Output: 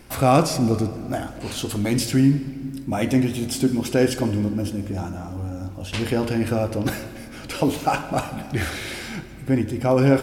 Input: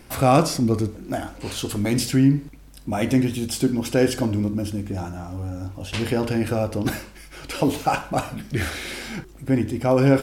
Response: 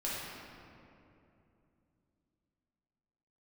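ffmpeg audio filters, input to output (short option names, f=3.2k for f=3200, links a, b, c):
-filter_complex "[0:a]asplit=2[a][b];[1:a]atrim=start_sample=2205,adelay=146[c];[b][c]afir=irnorm=-1:irlink=0,volume=-18.5dB[d];[a][d]amix=inputs=2:normalize=0"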